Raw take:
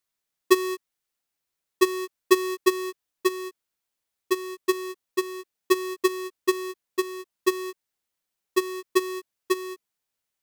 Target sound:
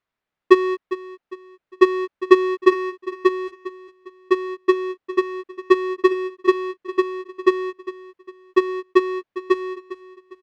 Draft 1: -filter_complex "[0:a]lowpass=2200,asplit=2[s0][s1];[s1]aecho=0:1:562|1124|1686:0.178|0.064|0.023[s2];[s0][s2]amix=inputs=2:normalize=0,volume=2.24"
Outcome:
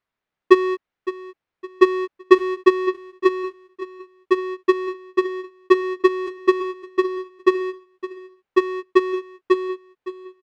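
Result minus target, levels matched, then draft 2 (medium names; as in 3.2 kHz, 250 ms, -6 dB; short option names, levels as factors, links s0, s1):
echo 158 ms late
-filter_complex "[0:a]lowpass=2200,asplit=2[s0][s1];[s1]aecho=0:1:404|808|1212:0.178|0.064|0.023[s2];[s0][s2]amix=inputs=2:normalize=0,volume=2.24"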